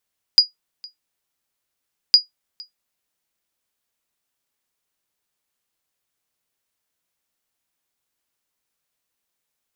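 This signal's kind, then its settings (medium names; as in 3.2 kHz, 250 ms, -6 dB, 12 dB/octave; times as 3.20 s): sonar ping 4.89 kHz, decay 0.14 s, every 1.76 s, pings 2, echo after 0.46 s, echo -26 dB -2 dBFS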